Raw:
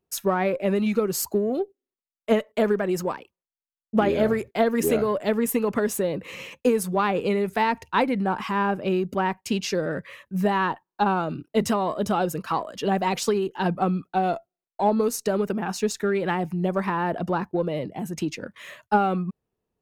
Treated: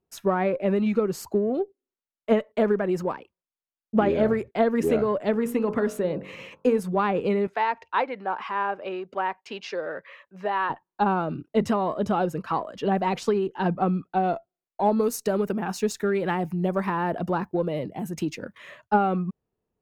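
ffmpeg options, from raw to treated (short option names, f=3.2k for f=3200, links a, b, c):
-filter_complex "[0:a]asettb=1/sr,asplit=3[a][b][c];[a]atrim=end=5.314[d];[b]atrim=start=5.31:end=6.8,asetpts=PTS-STARTPTS,afade=t=in:d=0.004:c=qsin,afade=t=out:st=1.486:d=0.004:c=qsin,bandreject=f=47.72:t=h:w=4,bandreject=f=95.44:t=h:w=4,bandreject=f=143.16:t=h:w=4,bandreject=f=190.88:t=h:w=4,bandreject=f=238.6:t=h:w=4,bandreject=f=286.32:t=h:w=4,bandreject=f=334.04:t=h:w=4,bandreject=f=381.76:t=h:w=4,bandreject=f=429.48:t=h:w=4,bandreject=f=477.2:t=h:w=4,bandreject=f=524.92:t=h:w=4,bandreject=f=572.64:t=h:w=4,bandreject=f=620.36:t=h:w=4,bandreject=f=668.08:t=h:w=4,bandreject=f=715.8:t=h:w=4,bandreject=f=763.52:t=h:w=4,bandreject=f=811.24:t=h:w=4,bandreject=f=858.96:t=h:w=4,bandreject=f=906.68:t=h:w=4,bandreject=f=954.4:t=h:w=4,bandreject=f=1.00212k:t=h:w=4,bandreject=f=1.04984k:t=h:w=4,bandreject=f=1.09756k:t=h:w=4,bandreject=f=1.14528k:t=h:w=4,bandreject=f=1.193k:t=h:w=4,bandreject=f=1.24072k:t=h:w=4,bandreject=f=1.28844k:t=h:w=4,bandreject=f=1.33616k:t=h:w=4,bandreject=f=1.38388k:t=h:w=4,bandreject=f=1.4316k:t=h:w=4,bandreject=f=1.47932k:t=h:w=4,bandreject=f=1.52704k:t=h:w=4[e];[c]atrim=start=6.796[f];[d][e]acrossfade=d=0.004:c1=hsin:c2=qsin[g];[g][f]acrossfade=d=0.004:c1=qsin:c2=hsin,asettb=1/sr,asplit=3[h][i][j];[h]atrim=end=7.474[k];[i]atrim=start=7.47:end=10.7,asetpts=PTS-STARTPTS,afade=t=in:d=0.004:c=qsin,afade=t=out:st=3.226:d=0.004:c=qsin,acrossover=split=430 6100:gain=0.0794 1 0.126[l][m][n];[l][m][n]amix=inputs=3:normalize=0[o];[j]atrim=start=10.696[p];[k][o]acrossfade=d=0.004:c1=hsin:c2=qsin[q];[q][p]acrossfade=d=0.004:c1=qsin:c2=hsin,asettb=1/sr,asplit=3[r][s][t];[r]atrim=end=14.844[u];[s]atrim=start=14.84:end=18.58,asetpts=PTS-STARTPTS,afade=t=in:d=0.004:c=qsin,afade=t=out:st=3.736:d=0.004:c=qsin,aemphasis=mode=production:type=50fm[v];[t]atrim=start=18.576[w];[u][v]acrossfade=d=0.004:c1=hsin:c2=qsin[x];[x][w]acrossfade=d=0.004:c1=qsin:c2=hsin,lowpass=f=2k:p=1"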